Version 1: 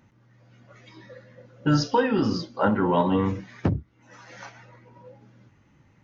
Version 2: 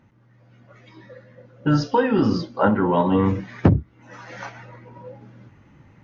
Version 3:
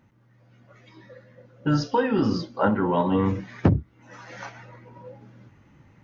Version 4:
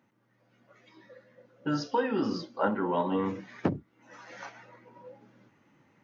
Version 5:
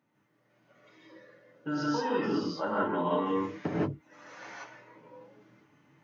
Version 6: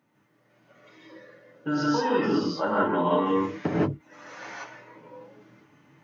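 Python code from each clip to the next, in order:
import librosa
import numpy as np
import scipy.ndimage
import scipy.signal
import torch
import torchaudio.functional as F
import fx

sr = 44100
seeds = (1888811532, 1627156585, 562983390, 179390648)

y1 = fx.high_shelf(x, sr, hz=4500.0, db=-11.0)
y1 = fx.rider(y1, sr, range_db=10, speed_s=0.5)
y1 = F.gain(torch.from_numpy(y1), 4.5).numpy()
y2 = fx.high_shelf(y1, sr, hz=5900.0, db=5.5)
y2 = F.gain(torch.from_numpy(y2), -3.5).numpy()
y3 = scipy.signal.sosfilt(scipy.signal.butter(2, 220.0, 'highpass', fs=sr, output='sos'), y2)
y3 = F.gain(torch.from_numpy(y3), -5.0).numpy()
y4 = y3 + 0.35 * np.pad(y3, (int(6.8 * sr / 1000.0), 0))[:len(y3)]
y4 = fx.rev_gated(y4, sr, seeds[0], gate_ms=200, shape='rising', drr_db=-6.5)
y4 = F.gain(torch.from_numpy(y4), -7.0).numpy()
y5 = fx.end_taper(y4, sr, db_per_s=360.0)
y5 = F.gain(torch.from_numpy(y5), 5.5).numpy()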